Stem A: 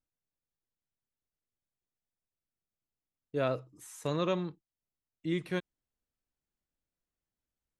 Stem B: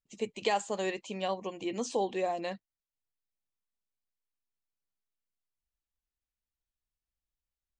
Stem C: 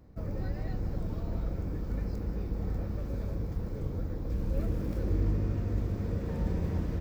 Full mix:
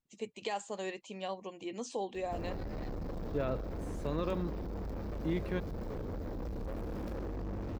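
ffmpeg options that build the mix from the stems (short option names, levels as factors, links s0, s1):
-filter_complex "[0:a]volume=1.06[s0];[1:a]aemphasis=mode=production:type=75kf,volume=0.501[s1];[2:a]equalizer=f=125:t=o:w=1:g=-5,equalizer=f=250:t=o:w=1:g=4,equalizer=f=500:t=o:w=1:g=5,equalizer=f=4000:t=o:w=1:g=4,alimiter=level_in=1.06:limit=0.0631:level=0:latency=1:release=108,volume=0.944,asoftclip=type=tanh:threshold=0.0112,adelay=2150,volume=1.33[s2];[s0][s1]amix=inputs=2:normalize=0,aemphasis=mode=reproduction:type=75kf,alimiter=level_in=1.12:limit=0.0631:level=0:latency=1:release=152,volume=0.891,volume=1[s3];[s2][s3]amix=inputs=2:normalize=0"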